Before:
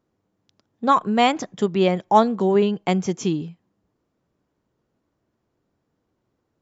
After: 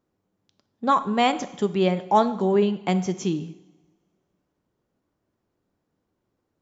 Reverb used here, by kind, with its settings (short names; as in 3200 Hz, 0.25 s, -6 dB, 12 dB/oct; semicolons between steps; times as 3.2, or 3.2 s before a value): two-slope reverb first 0.85 s, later 2.3 s, from -22 dB, DRR 11.5 dB; gain -3 dB